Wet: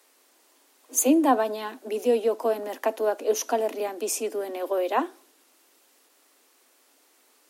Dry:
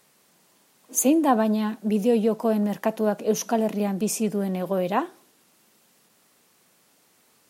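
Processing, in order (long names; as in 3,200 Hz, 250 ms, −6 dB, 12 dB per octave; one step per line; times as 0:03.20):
Butterworth high-pass 250 Hz 96 dB per octave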